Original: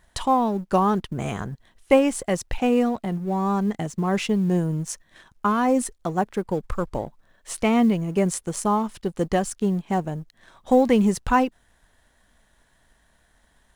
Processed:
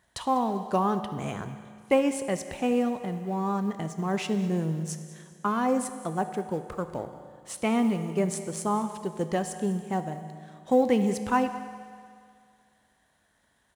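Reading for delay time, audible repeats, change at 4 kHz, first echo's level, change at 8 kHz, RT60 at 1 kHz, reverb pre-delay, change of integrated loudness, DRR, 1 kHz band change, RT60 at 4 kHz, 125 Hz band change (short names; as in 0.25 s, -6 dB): 0.198 s, 1, -5.0 dB, -18.0 dB, -5.0 dB, 2.2 s, 7 ms, -5.0 dB, 8.5 dB, -5.0 dB, 2.2 s, -5.5 dB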